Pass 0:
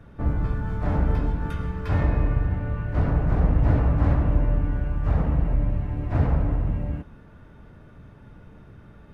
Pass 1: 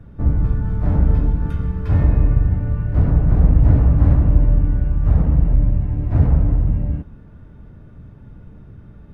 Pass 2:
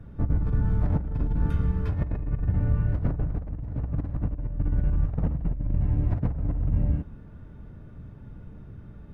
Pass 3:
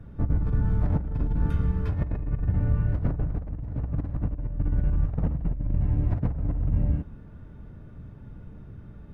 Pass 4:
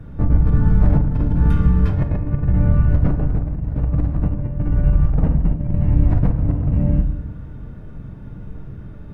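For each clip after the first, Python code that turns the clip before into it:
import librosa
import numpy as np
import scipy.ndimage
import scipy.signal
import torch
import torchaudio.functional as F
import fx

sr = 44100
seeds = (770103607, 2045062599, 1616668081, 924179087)

y1 = fx.low_shelf(x, sr, hz=380.0, db=12.0)
y1 = F.gain(torch.from_numpy(y1), -4.0).numpy()
y2 = fx.over_compress(y1, sr, threshold_db=-17.0, ratio=-0.5)
y2 = F.gain(torch.from_numpy(y2), -6.5).numpy()
y3 = y2
y4 = fx.room_shoebox(y3, sr, seeds[0], volume_m3=310.0, walls='mixed', distance_m=0.54)
y4 = F.gain(torch.from_numpy(y4), 7.5).numpy()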